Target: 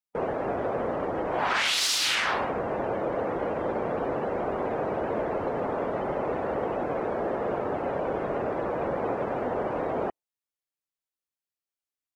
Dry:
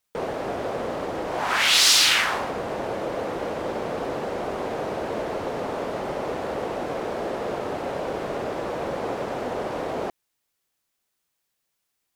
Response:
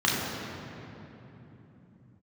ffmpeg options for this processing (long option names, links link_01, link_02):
-af "afftdn=noise_reduction=18:noise_floor=-40,alimiter=limit=-16dB:level=0:latency=1:release=82"